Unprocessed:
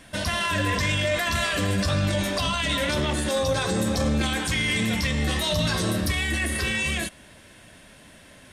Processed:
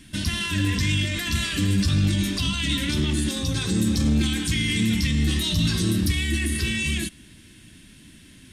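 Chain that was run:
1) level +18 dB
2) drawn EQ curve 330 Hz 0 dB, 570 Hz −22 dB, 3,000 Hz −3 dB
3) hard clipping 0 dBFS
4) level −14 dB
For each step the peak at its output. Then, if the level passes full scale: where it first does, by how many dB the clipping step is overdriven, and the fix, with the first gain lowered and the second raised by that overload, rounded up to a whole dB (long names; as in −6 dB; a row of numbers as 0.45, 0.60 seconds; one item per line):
+5.0, +3.5, 0.0, −14.0 dBFS
step 1, 3.5 dB
step 1 +14 dB, step 4 −10 dB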